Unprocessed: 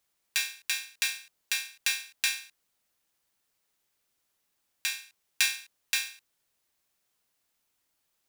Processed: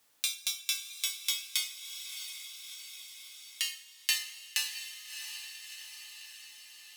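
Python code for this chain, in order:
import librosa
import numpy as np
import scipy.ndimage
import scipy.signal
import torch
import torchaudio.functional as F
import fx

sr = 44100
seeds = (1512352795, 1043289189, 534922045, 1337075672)

y = fx.speed_glide(x, sr, from_pct=151, to_pct=87)
y = fx.echo_diffused(y, sr, ms=666, feedback_pct=50, wet_db=-13.5)
y = fx.rev_double_slope(y, sr, seeds[0], early_s=0.21, late_s=1.7, knee_db=-20, drr_db=4.5)
y = fx.band_squash(y, sr, depth_pct=40)
y = F.gain(torch.from_numpy(y), -2.0).numpy()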